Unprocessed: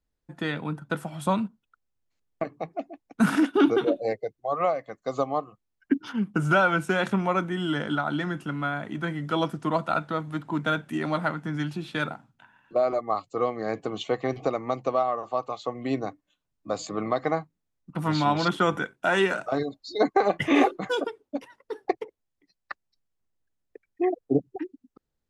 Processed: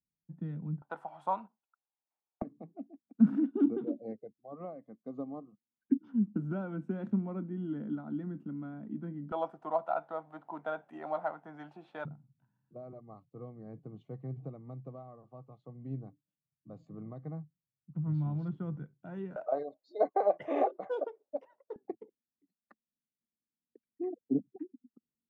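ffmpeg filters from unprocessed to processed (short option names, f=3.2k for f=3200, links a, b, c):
-af "asetnsamples=n=441:p=0,asendcmd='0.82 bandpass f 830;2.42 bandpass f 230;9.32 bandpass f 730;12.05 bandpass f 140;19.36 bandpass f 610;21.76 bandpass f 230',bandpass=f=170:t=q:w=3.9:csg=0"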